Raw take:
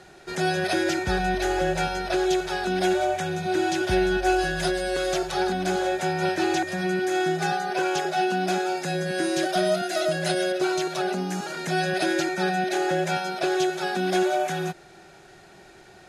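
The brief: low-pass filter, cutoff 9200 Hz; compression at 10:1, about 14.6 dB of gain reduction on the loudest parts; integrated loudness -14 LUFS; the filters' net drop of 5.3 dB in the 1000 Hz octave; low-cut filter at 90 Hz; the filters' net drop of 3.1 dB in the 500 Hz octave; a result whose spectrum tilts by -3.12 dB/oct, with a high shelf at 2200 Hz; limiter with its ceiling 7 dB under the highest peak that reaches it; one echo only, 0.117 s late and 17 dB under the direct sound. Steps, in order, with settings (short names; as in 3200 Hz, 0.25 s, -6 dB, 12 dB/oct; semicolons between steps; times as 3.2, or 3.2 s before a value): HPF 90 Hz; LPF 9200 Hz; bell 500 Hz -3.5 dB; bell 1000 Hz -8 dB; high shelf 2200 Hz +7.5 dB; compressor 10:1, threshold -36 dBFS; limiter -31.5 dBFS; echo 0.117 s -17 dB; gain +26 dB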